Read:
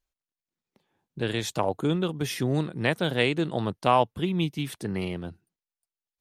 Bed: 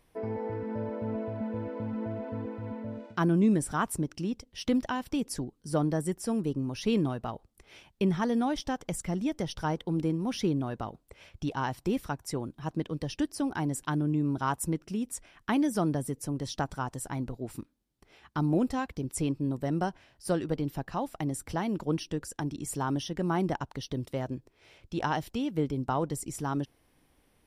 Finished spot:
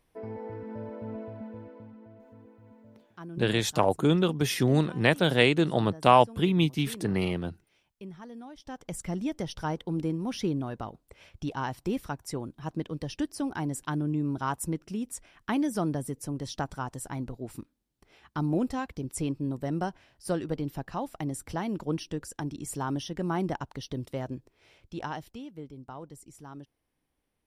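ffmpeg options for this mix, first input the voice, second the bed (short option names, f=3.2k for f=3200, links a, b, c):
-filter_complex "[0:a]adelay=2200,volume=2.5dB[a];[1:a]volume=11dB,afade=t=out:st=1.19:d=0.8:silence=0.251189,afade=t=in:st=8.58:d=0.46:silence=0.16788,afade=t=out:st=24.45:d=1.11:silence=0.237137[b];[a][b]amix=inputs=2:normalize=0"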